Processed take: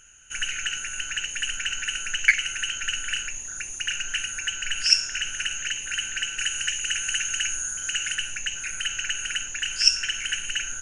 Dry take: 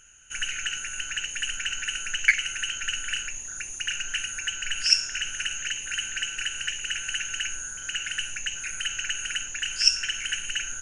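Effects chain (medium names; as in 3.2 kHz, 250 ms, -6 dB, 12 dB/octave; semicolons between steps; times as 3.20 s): 6.39–8.15 s: treble shelf 6.4 kHz +8.5 dB; trim +1.5 dB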